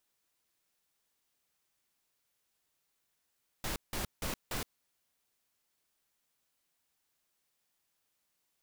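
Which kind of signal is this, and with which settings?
noise bursts pink, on 0.12 s, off 0.17 s, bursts 4, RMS -36 dBFS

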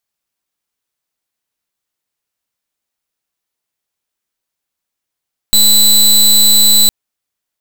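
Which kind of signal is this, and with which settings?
pulse 3990 Hz, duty 22% -7.5 dBFS 1.36 s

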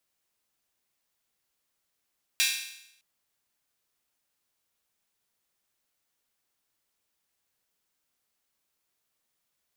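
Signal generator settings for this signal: open hi-hat length 0.61 s, high-pass 2500 Hz, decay 0.79 s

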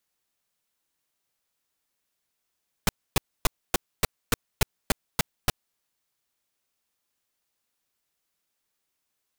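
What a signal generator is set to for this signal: noise bursts pink, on 0.02 s, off 0.27 s, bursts 10, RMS -19.5 dBFS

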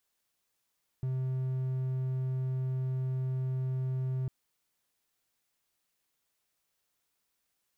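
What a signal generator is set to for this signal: tone triangle 130 Hz -27.5 dBFS 3.25 s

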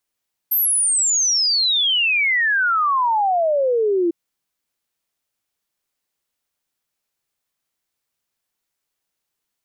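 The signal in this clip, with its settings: log sweep 13000 Hz -> 330 Hz 3.60 s -15 dBFS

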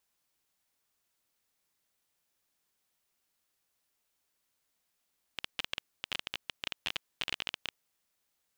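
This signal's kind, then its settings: random clicks 18/s -16.5 dBFS 2.55 s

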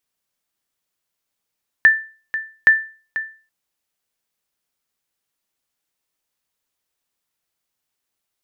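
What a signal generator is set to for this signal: sonar ping 1770 Hz, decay 0.37 s, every 0.82 s, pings 2, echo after 0.49 s, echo -13 dB -3.5 dBFS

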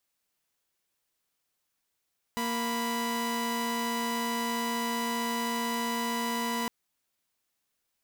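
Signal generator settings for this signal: chord A#3/B5 saw, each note -29 dBFS 4.31 s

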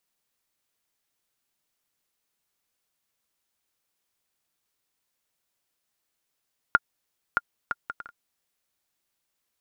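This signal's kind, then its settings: bouncing ball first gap 0.62 s, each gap 0.55, 1410 Hz, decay 35 ms -4.5 dBFS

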